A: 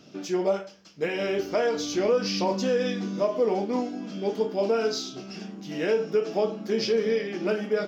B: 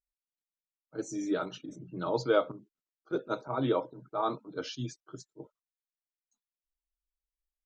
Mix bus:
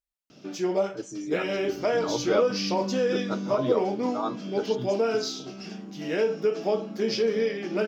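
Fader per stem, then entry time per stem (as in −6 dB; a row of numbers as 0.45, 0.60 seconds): −0.5, 0.0 decibels; 0.30, 0.00 seconds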